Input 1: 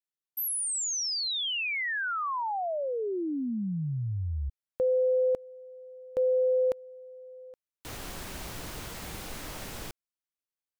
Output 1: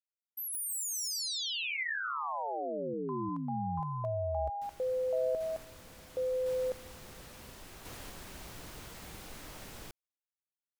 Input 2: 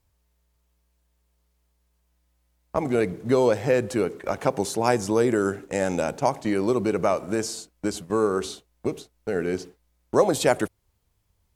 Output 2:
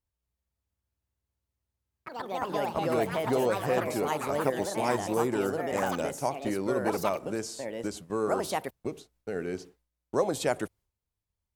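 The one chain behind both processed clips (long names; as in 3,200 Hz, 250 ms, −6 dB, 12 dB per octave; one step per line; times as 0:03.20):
noise gate with hold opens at −36 dBFS, hold 134 ms, range −10 dB
delay with pitch and tempo change per echo 230 ms, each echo +4 semitones, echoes 3
level −7.5 dB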